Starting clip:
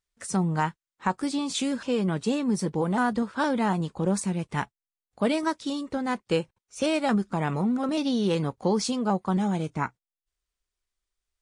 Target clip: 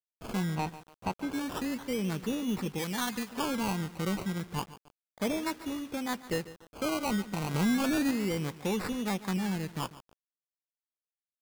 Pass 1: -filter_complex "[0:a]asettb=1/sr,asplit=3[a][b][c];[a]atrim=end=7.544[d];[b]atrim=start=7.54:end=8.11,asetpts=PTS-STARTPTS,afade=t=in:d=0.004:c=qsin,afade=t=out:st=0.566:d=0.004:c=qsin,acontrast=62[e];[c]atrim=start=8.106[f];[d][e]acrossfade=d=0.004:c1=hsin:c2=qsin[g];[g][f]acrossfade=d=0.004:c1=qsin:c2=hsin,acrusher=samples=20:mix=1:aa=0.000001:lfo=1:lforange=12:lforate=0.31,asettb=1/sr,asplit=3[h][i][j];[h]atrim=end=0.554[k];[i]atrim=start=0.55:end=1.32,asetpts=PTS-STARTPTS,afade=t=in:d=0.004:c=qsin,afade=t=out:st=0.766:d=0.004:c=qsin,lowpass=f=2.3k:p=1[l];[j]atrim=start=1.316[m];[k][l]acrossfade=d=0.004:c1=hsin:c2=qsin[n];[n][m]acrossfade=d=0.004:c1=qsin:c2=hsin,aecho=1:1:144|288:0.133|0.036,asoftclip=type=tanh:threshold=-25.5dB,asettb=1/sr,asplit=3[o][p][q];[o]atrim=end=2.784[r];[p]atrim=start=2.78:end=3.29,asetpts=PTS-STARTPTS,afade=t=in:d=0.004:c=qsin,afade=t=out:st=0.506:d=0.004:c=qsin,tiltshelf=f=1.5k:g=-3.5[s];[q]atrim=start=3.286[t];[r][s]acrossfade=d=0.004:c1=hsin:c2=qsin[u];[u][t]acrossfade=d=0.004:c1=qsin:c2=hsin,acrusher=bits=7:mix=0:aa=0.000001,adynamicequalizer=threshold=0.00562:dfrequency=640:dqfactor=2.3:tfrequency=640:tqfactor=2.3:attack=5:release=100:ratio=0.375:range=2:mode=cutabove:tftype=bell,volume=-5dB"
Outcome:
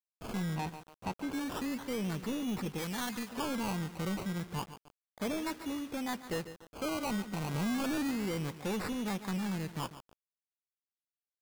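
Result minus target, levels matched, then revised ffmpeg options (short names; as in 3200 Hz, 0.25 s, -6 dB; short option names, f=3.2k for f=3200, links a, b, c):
soft clip: distortion +9 dB
-filter_complex "[0:a]asettb=1/sr,asplit=3[a][b][c];[a]atrim=end=7.544[d];[b]atrim=start=7.54:end=8.11,asetpts=PTS-STARTPTS,afade=t=in:d=0.004:c=qsin,afade=t=out:st=0.566:d=0.004:c=qsin,acontrast=62[e];[c]atrim=start=8.106[f];[d][e]acrossfade=d=0.004:c1=hsin:c2=qsin[g];[g][f]acrossfade=d=0.004:c1=qsin:c2=hsin,acrusher=samples=20:mix=1:aa=0.000001:lfo=1:lforange=12:lforate=0.31,asettb=1/sr,asplit=3[h][i][j];[h]atrim=end=0.554[k];[i]atrim=start=0.55:end=1.32,asetpts=PTS-STARTPTS,afade=t=in:d=0.004:c=qsin,afade=t=out:st=0.766:d=0.004:c=qsin,lowpass=f=2.3k:p=1[l];[j]atrim=start=1.316[m];[k][l]acrossfade=d=0.004:c1=hsin:c2=qsin[n];[n][m]acrossfade=d=0.004:c1=qsin:c2=hsin,aecho=1:1:144|288:0.133|0.036,asoftclip=type=tanh:threshold=-16.5dB,asettb=1/sr,asplit=3[o][p][q];[o]atrim=end=2.784[r];[p]atrim=start=2.78:end=3.29,asetpts=PTS-STARTPTS,afade=t=in:d=0.004:c=qsin,afade=t=out:st=0.506:d=0.004:c=qsin,tiltshelf=f=1.5k:g=-3.5[s];[q]atrim=start=3.286[t];[r][s]acrossfade=d=0.004:c1=hsin:c2=qsin[u];[u][t]acrossfade=d=0.004:c1=qsin:c2=hsin,acrusher=bits=7:mix=0:aa=0.000001,adynamicequalizer=threshold=0.00562:dfrequency=640:dqfactor=2.3:tfrequency=640:tqfactor=2.3:attack=5:release=100:ratio=0.375:range=2:mode=cutabove:tftype=bell,volume=-5dB"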